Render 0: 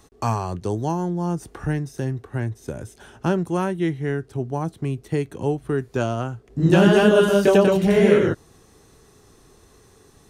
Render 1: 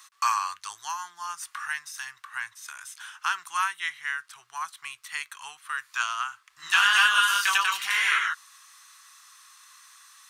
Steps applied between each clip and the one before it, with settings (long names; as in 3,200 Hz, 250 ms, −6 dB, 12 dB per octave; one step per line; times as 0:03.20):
elliptic high-pass filter 1,100 Hz, stop band 50 dB
level +7 dB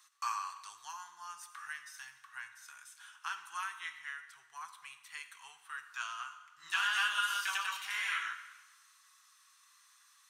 flanger 0.2 Hz, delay 4.9 ms, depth 1.6 ms, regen −53%
dense smooth reverb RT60 1.2 s, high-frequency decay 0.95×, DRR 8.5 dB
level −8.5 dB